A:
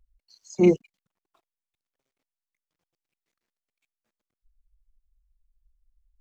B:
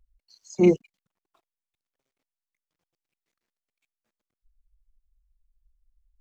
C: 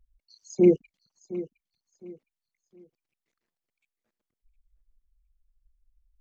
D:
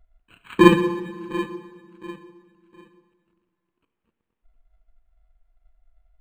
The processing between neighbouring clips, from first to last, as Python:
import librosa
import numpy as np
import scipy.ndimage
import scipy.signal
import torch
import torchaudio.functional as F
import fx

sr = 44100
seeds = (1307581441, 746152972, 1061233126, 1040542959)

y1 = x
y2 = fx.envelope_sharpen(y1, sr, power=1.5)
y2 = fx.echo_feedback(y2, sr, ms=712, feedback_pct=30, wet_db=-15.5)
y3 = fx.bit_reversed(y2, sr, seeds[0], block=64)
y3 = fx.rev_plate(y3, sr, seeds[1], rt60_s=2.1, hf_ratio=0.5, predelay_ms=0, drr_db=7.0)
y3 = np.interp(np.arange(len(y3)), np.arange(len(y3))[::8], y3[::8])
y3 = y3 * 10.0 ** (6.5 / 20.0)